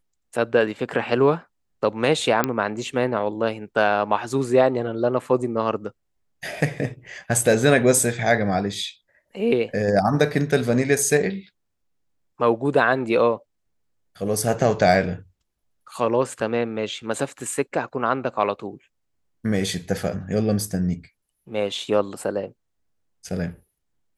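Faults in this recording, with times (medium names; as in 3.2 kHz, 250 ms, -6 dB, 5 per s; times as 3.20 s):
2.44 s: pop -5 dBFS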